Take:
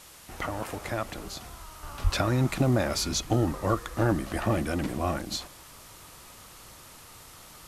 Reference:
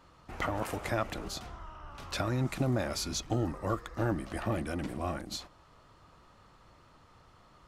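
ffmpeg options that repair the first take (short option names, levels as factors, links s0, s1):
-filter_complex "[0:a]asplit=3[s0][s1][s2];[s0]afade=t=out:st=2.03:d=0.02[s3];[s1]highpass=f=140:w=0.5412,highpass=f=140:w=1.3066,afade=t=in:st=2.03:d=0.02,afade=t=out:st=2.15:d=0.02[s4];[s2]afade=t=in:st=2.15:d=0.02[s5];[s3][s4][s5]amix=inputs=3:normalize=0,afwtdn=0.0035,asetnsamples=n=441:p=0,asendcmd='1.83 volume volume -6dB',volume=1"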